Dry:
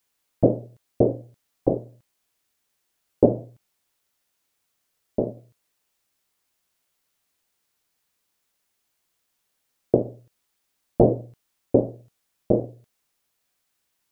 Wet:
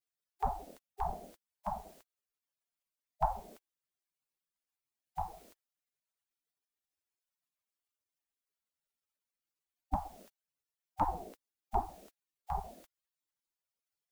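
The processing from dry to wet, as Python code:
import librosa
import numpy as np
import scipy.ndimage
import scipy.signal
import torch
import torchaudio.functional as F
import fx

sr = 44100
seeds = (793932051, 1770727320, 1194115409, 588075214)

y = fx.peak_eq(x, sr, hz=350.0, db=-6.5, octaves=0.32, at=(11.09, 11.87))
y = fx.spec_gate(y, sr, threshold_db=-20, keep='weak')
y = F.gain(torch.from_numpy(y), 12.0).numpy()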